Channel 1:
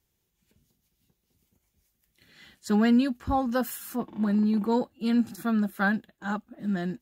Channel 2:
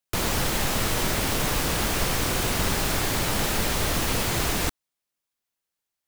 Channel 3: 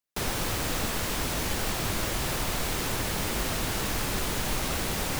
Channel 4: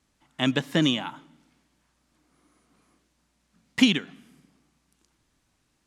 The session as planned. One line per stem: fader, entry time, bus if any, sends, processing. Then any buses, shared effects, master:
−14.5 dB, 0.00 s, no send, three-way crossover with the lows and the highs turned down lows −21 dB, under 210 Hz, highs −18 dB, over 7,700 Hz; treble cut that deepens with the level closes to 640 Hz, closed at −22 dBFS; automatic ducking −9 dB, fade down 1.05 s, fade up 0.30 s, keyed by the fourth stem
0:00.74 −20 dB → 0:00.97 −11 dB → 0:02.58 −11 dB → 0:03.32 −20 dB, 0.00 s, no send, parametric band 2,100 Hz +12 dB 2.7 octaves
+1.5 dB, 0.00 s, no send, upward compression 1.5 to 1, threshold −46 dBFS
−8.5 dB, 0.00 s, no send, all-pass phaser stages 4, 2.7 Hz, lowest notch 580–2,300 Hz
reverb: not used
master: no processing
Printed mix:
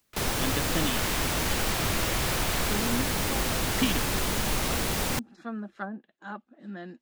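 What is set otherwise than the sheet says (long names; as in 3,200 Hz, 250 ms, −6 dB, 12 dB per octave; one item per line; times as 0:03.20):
stem 1 −14.5 dB → −6.0 dB
stem 2 −20.0 dB → −26.5 dB
stem 4: missing all-pass phaser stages 4, 2.7 Hz, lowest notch 580–2,300 Hz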